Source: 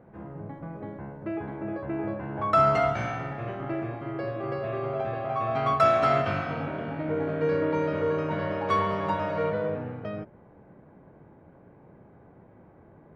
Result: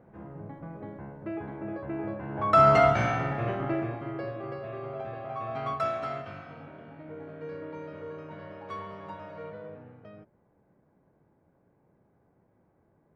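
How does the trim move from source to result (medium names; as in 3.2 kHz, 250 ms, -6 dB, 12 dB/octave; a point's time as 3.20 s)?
2.19 s -3 dB
2.77 s +4 dB
3.51 s +4 dB
4.63 s -7 dB
5.68 s -7 dB
6.28 s -14 dB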